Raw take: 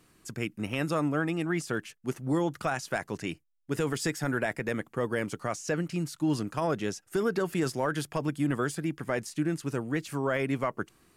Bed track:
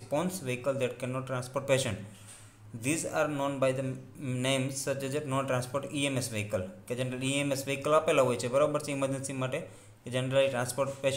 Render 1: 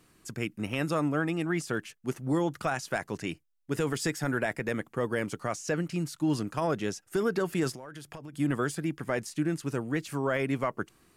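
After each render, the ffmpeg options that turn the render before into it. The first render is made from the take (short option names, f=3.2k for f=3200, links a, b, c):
-filter_complex "[0:a]asplit=3[a][b][c];[a]afade=t=out:st=7.74:d=0.02[d];[b]acompressor=threshold=-39dB:ratio=12:attack=3.2:release=140:knee=1:detection=peak,afade=t=in:st=7.74:d=0.02,afade=t=out:st=8.33:d=0.02[e];[c]afade=t=in:st=8.33:d=0.02[f];[d][e][f]amix=inputs=3:normalize=0"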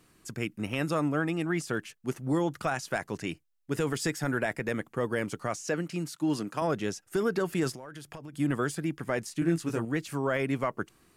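-filter_complex "[0:a]asettb=1/sr,asplit=3[a][b][c];[a]atrim=end=5.684[d];[b]atrim=start=5.68:end=6.62,asetpts=PTS-STARTPTS,afade=t=in:d=0.004:c=qsin,afade=t=out:st=0.936:d=0.004:c=qsin,highpass=170[e];[c]atrim=start=6.616[f];[d][e]acrossfade=d=0.004:c1=hsin:c2=qsin[g];[g][f]acrossfade=d=0.004:c1=qsin:c2=hsin,asettb=1/sr,asplit=3[h][i][j];[h]atrim=end=9.404[k];[i]atrim=start=9.4:end=9.85,asetpts=PTS-STARTPTS,afade=t=in:d=0.004:c=qsin,afade=t=out:st=0.446:d=0.004:c=qsin,asplit=2[l][m];[m]adelay=18,volume=-3dB[n];[l][n]amix=inputs=2:normalize=0,atrim=end_sample=19845[o];[j]atrim=start=9.846[p];[k][o]acrossfade=d=0.004:c1=hsin:c2=qsin[q];[q][p]acrossfade=d=0.004:c1=qsin:c2=hsin"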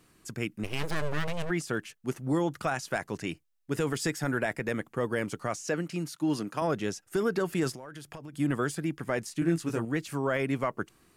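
-filter_complex "[0:a]asplit=3[a][b][c];[a]afade=t=out:st=0.63:d=0.02[d];[b]aeval=exprs='abs(val(0))':c=same,afade=t=in:st=0.63:d=0.02,afade=t=out:st=1.49:d=0.02[e];[c]afade=t=in:st=1.49:d=0.02[f];[d][e][f]amix=inputs=3:normalize=0,asettb=1/sr,asplit=3[g][h][i];[g]atrim=end=5.974[j];[h]atrim=start=5.97:end=6.76,asetpts=PTS-STARTPTS,afade=t=in:d=0.004:c=qsin,afade=t=out:st=0.786:d=0.004:c=qsin,bandreject=f=7.7k:w=12[k];[i]atrim=start=6.756[l];[j][k]acrossfade=d=0.004:c1=hsin:c2=qsin[m];[m][l]acrossfade=d=0.004:c1=qsin:c2=hsin"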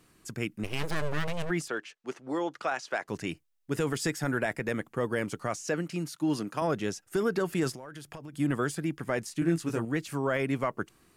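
-filter_complex "[0:a]asettb=1/sr,asplit=3[a][b][c];[a]atrim=end=1.684[d];[b]atrim=start=1.68:end=3.08,asetpts=PTS-STARTPTS,afade=t=in:d=0.004:c=qsin,afade=t=out:st=1.396:d=0.004:c=qsin,acrossover=split=300 6800:gain=0.0891 1 0.0794[e][f][g];[e][f][g]amix=inputs=3:normalize=0[h];[c]atrim=start=3.076[i];[d][h]acrossfade=d=0.004:c1=hsin:c2=qsin[j];[j][i]acrossfade=d=0.004:c1=qsin:c2=hsin"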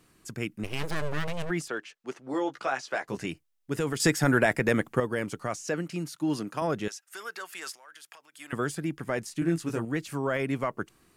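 -filter_complex "[0:a]asettb=1/sr,asplit=3[a][b][c];[a]atrim=end=2.324[d];[b]atrim=start=2.32:end=3.26,asetpts=PTS-STARTPTS,afade=t=in:d=0.004:c=qsin,afade=t=out:st=0.936:d=0.004:c=qsin,asplit=2[e][f];[f]adelay=15,volume=-5dB[g];[e][g]amix=inputs=2:normalize=0,atrim=end_sample=41454[h];[c]atrim=start=3.256[i];[d][h]acrossfade=d=0.004:c1=hsin:c2=qsin[j];[j][i]acrossfade=d=0.004:c1=qsin:c2=hsin,asettb=1/sr,asplit=3[k][l][m];[k]atrim=end=6.884[n];[l]atrim=start=6.88:end=8.53,asetpts=PTS-STARTPTS,afade=t=in:d=0.004:c=qsin,afade=t=out:st=1.646:d=0.004:c=qsin,highpass=1.2k[o];[m]atrim=start=8.526[p];[n][o]acrossfade=d=0.004:c1=hsin:c2=qsin[q];[q][p]acrossfade=d=0.004:c1=qsin:c2=hsin,asplit=3[r][s][t];[r]atrim=end=4.002[u];[s]atrim=start=3.998:end=5.002,asetpts=PTS-STARTPTS,volume=7dB[v];[t]atrim=start=4.998[w];[u][v]acrossfade=d=0.004:c1=hsin:c2=hsin[x];[x][w]acrossfade=d=0.004:c1=hsin:c2=hsin"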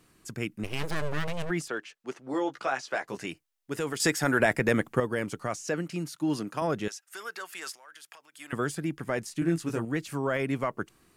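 -filter_complex "[0:a]asettb=1/sr,asplit=3[a][b][c];[a]atrim=end=3.084[d];[b]atrim=start=3.08:end=4.4,asetpts=PTS-STARTPTS,afade=t=in:d=0.004:c=qsin,afade=t=out:st=1.316:d=0.004:c=qsin,lowshelf=f=210:g=-9.5[e];[c]atrim=start=4.396[f];[d][e]acrossfade=d=0.004:c1=hsin:c2=qsin[g];[g][f]acrossfade=d=0.004:c1=qsin:c2=hsin"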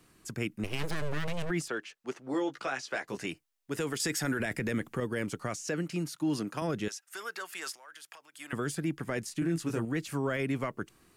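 -filter_complex "[0:a]acrossover=split=490|1400[a][b][c];[b]acompressor=threshold=-41dB:ratio=6[d];[a][d][c]amix=inputs=3:normalize=0,alimiter=limit=-22dB:level=0:latency=1:release=29"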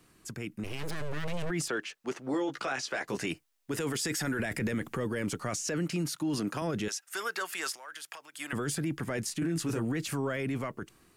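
-af "alimiter=level_in=6dB:limit=-24dB:level=0:latency=1:release=10,volume=-6dB,dynaudnorm=f=330:g=5:m=6dB"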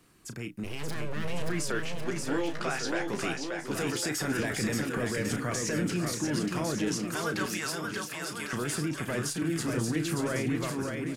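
-filter_complex "[0:a]asplit=2[a][b];[b]adelay=33,volume=-10dB[c];[a][c]amix=inputs=2:normalize=0,aecho=1:1:580|1102|1572|1995|2375:0.631|0.398|0.251|0.158|0.1"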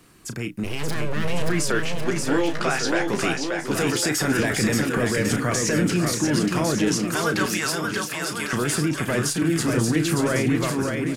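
-af "volume=8.5dB"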